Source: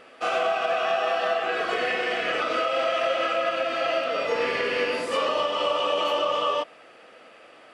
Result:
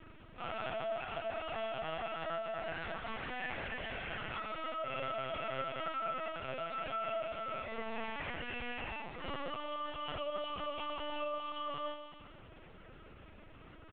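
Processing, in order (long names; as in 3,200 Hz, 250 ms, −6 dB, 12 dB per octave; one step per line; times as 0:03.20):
mains hum 50 Hz, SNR 17 dB
dynamic equaliser 490 Hz, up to −4 dB, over −37 dBFS, Q 1.2
phase-vocoder stretch with locked phases 1.8×
tuned comb filter 53 Hz, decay 1.1 s, harmonics all, mix 70%
in parallel at −11 dB: wrap-around overflow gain 43 dB
on the sum: tuned comb filter 220 Hz, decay 0.55 s, harmonics all, mix 70%
repeating echo 129 ms, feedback 58%, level −15 dB
linear-prediction vocoder at 8 kHz pitch kept
level +3.5 dB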